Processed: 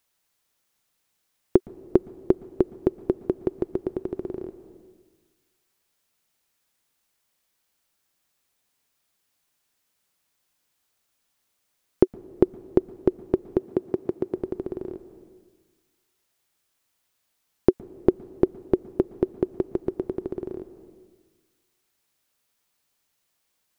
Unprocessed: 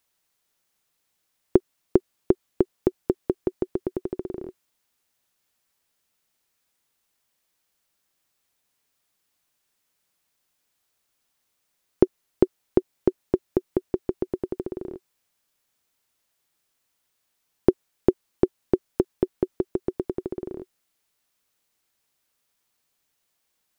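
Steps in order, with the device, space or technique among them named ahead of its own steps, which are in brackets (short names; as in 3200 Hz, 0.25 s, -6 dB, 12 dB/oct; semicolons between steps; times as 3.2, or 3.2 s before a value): compressed reverb return (on a send at -8 dB: reverb RT60 1.3 s, pre-delay 0.113 s + compressor 6:1, threshold -35 dBFS, peak gain reduction 16.5 dB); 13.58–14.35 on the sum: HPF 100 Hz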